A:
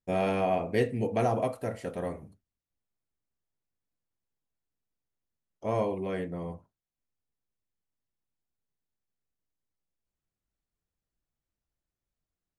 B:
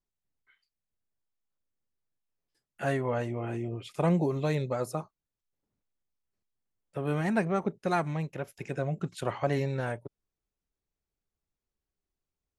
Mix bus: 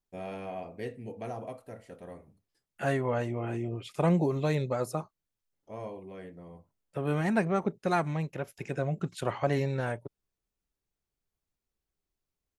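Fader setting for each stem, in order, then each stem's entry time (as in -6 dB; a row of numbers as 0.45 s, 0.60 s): -11.5 dB, +0.5 dB; 0.05 s, 0.00 s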